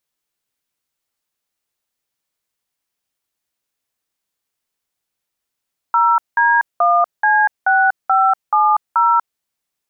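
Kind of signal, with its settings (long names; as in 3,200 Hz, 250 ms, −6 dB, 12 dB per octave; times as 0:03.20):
touch tones "0D1C6570", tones 241 ms, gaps 190 ms, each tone −13 dBFS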